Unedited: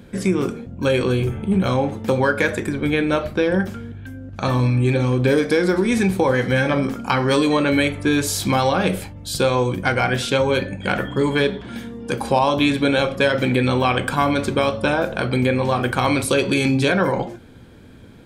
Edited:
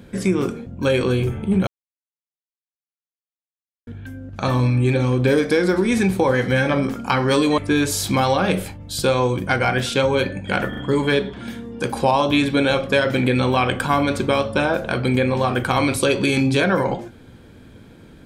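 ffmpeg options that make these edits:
-filter_complex "[0:a]asplit=6[s0][s1][s2][s3][s4][s5];[s0]atrim=end=1.67,asetpts=PTS-STARTPTS,afade=t=out:st=1.666:d=0.004:c=hsin[s6];[s1]atrim=start=1.67:end=3.87,asetpts=PTS-STARTPTS,volume=0[s7];[s2]atrim=start=3.87:end=7.582,asetpts=PTS-STARTPTS,afade=t=in:d=0.004:c=hsin[s8];[s3]atrim=start=7.938:end=11.092[s9];[s4]atrim=start=11.048:end=11.092[s10];[s5]atrim=start=11.048[s11];[s6][s7][s8]concat=n=3:v=0:a=1[s12];[s12][s9]acrossfade=d=0.004:c1=hsin:c2=hsin[s13];[s13][s10]acrossfade=d=0.004:c1=hsin:c2=hsin[s14];[s14][s11]acrossfade=d=0.004:c1=hsin:c2=hsin"

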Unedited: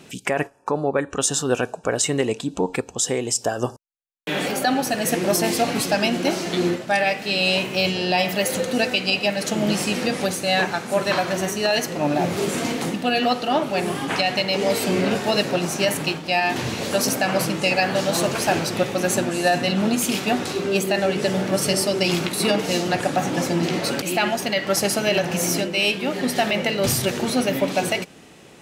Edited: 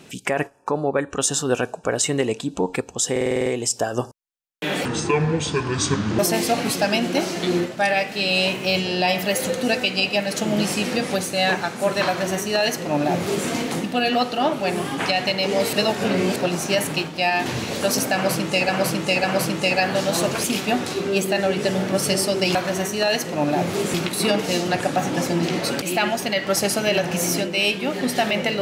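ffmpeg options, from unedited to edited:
-filter_complex "[0:a]asplit=17[s0][s1][s2][s3][s4][s5][s6][s7][s8][s9][s10][s11][s12][s13][s14][s15][s16];[s0]atrim=end=3.162[s17];[s1]atrim=start=3.108:end=3.162[s18];[s2]atrim=start=3.108:end=3.162[s19];[s3]atrim=start=3.108:end=3.162[s20];[s4]atrim=start=3.108:end=3.162[s21];[s5]atrim=start=3.108:end=3.162[s22];[s6]atrim=start=3.108:end=3.162[s23];[s7]atrim=start=3.108:end=4.504[s24];[s8]atrim=start=4.5:end=5.29,asetpts=PTS-STARTPTS,asetrate=26019,aresample=44100,atrim=end_sample=59049,asetpts=PTS-STARTPTS[s25];[s9]atrim=start=5.286:end=14.832[s26];[s10]atrim=start=14.828:end=15.462,asetpts=PTS-STARTPTS,areverse[s27];[s11]atrim=start=15.458:end=17.792[s28];[s12]atrim=start=17.238:end=17.792[s29];[s13]atrim=start=17.238:end=18.442[s30];[s14]atrim=start=20.028:end=22.142[s31];[s15]atrim=start=11.178:end=12.572[s32];[s16]atrim=start=22.138[s33];[s17][s18]acrossfade=d=0.004:c1=hsin:c2=hsin[s34];[s34][s19]acrossfade=d=0.004:c1=hsin:c2=hsin[s35];[s35][s20]acrossfade=d=0.004:c1=hsin:c2=hsin[s36];[s36][s21]acrossfade=d=0.004:c1=hsin:c2=hsin[s37];[s37][s22]acrossfade=d=0.004:c1=hsin:c2=hsin[s38];[s38][s23]acrossfade=d=0.004:c1=hsin:c2=hsin[s39];[s39][s24]acrossfade=d=0.004:c1=hsin:c2=hsin[s40];[s40][s25]acrossfade=d=0.004:c1=hsin:c2=hsin[s41];[s41][s26]acrossfade=d=0.004:c1=hsin:c2=hsin[s42];[s42][s27]acrossfade=d=0.004:c1=hsin:c2=hsin[s43];[s43][s28]acrossfade=d=0.004:c1=hsin:c2=hsin[s44];[s44][s29]acrossfade=d=0.004:c1=hsin:c2=hsin[s45];[s45][s30]acrossfade=d=0.004:c1=hsin:c2=hsin[s46];[s46][s31]acrossfade=d=0.004:c1=hsin:c2=hsin[s47];[s47][s32]acrossfade=d=0.004:c1=hsin:c2=hsin[s48];[s48][s33]acrossfade=d=0.004:c1=hsin:c2=hsin"

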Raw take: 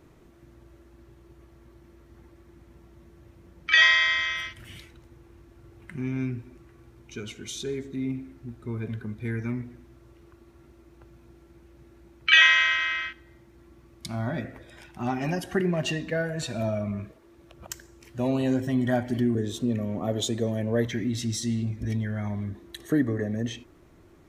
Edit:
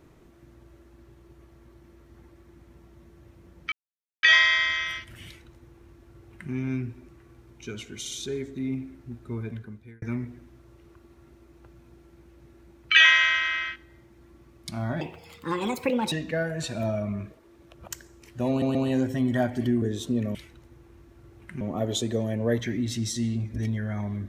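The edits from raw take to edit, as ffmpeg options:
-filter_complex "[0:a]asplit=11[s0][s1][s2][s3][s4][s5][s6][s7][s8][s9][s10];[s0]atrim=end=3.72,asetpts=PTS-STARTPTS,afade=t=out:st=3.716:d=0.004:c=hsin,apad=pad_dur=0.51[s11];[s1]atrim=start=3.72:end=7.542,asetpts=PTS-STARTPTS,afade=t=in:d=0.004:c=hsin[s12];[s2]atrim=start=7.478:end=7.542[s13];[s3]atrim=start=7.478:end=9.39,asetpts=PTS-STARTPTS,afade=t=out:st=1.232:d=0.68[s14];[s4]atrim=start=9.39:end=14.384,asetpts=PTS-STARTPTS,afade=t=in:d=0.004:c=hsin[s15];[s5]atrim=start=14.38:end=15.91,asetpts=PTS-STARTPTS,asetrate=60858,aresample=44100,atrim=end_sample=48893,asetpts=PTS-STARTPTS[s16];[s6]atrim=start=15.906:end=18.412[s17];[s7]atrim=start=18.278:end=18.412[s18];[s8]atrim=start=18.278:end=19.882[s19];[s9]atrim=start=4.748:end=6.012[s20];[s10]atrim=start=19.878[s21];[s11][s12]concat=n=2:v=0:a=1[s22];[s22][s13]acrossfade=d=0.004:c1=hsin:c2=hsin[s23];[s14][s15]concat=n=2:v=0:a=1[s24];[s23][s24]acrossfade=d=0.004:c1=hsin:c2=hsin[s25];[s25][s16]acrossfade=d=0.004:c1=hsin:c2=hsin[s26];[s26][s17]acrossfade=d=0.004:c1=hsin:c2=hsin[s27];[s27][s18]acrossfade=d=0.004:c1=hsin:c2=hsin[s28];[s28][s19]acrossfade=d=0.004:c1=hsin:c2=hsin[s29];[s29][s20]acrossfade=d=0.004:c1=hsin:c2=hsin[s30];[s30][s21]acrossfade=d=0.004:c1=hsin:c2=hsin"

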